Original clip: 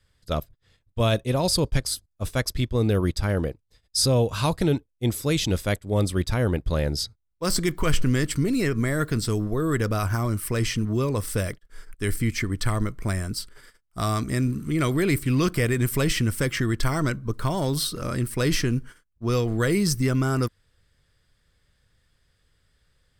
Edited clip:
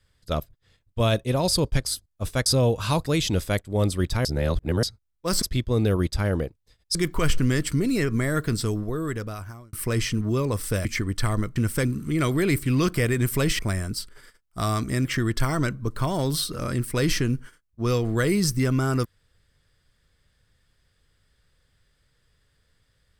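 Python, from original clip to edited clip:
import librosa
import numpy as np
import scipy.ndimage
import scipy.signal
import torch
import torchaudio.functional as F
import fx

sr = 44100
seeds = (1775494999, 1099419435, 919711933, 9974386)

y = fx.edit(x, sr, fx.move(start_s=2.46, length_s=1.53, to_s=7.59),
    fx.cut(start_s=4.59, length_s=0.64),
    fx.reverse_span(start_s=6.42, length_s=0.58),
    fx.fade_out_span(start_s=9.21, length_s=1.16),
    fx.cut(start_s=11.49, length_s=0.79),
    fx.swap(start_s=12.99, length_s=1.46, other_s=16.19, other_length_s=0.29), tone=tone)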